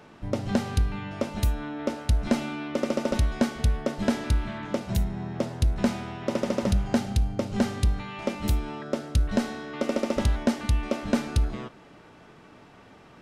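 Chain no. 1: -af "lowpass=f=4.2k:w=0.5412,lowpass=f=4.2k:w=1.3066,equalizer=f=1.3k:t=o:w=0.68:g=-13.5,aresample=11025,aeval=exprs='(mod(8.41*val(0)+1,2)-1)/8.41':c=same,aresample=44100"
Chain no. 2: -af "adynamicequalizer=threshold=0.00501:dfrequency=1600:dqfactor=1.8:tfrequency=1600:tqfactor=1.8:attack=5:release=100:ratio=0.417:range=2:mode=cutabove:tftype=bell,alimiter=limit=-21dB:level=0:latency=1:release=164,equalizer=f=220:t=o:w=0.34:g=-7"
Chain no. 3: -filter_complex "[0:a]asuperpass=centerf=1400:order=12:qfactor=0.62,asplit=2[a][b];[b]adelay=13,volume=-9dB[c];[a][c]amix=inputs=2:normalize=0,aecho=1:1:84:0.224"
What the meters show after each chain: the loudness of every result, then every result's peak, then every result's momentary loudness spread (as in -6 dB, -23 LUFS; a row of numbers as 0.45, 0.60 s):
-29.0, -34.5, -39.0 LUFS; -13.0, -19.5, -19.5 dBFS; 7, 9, 10 LU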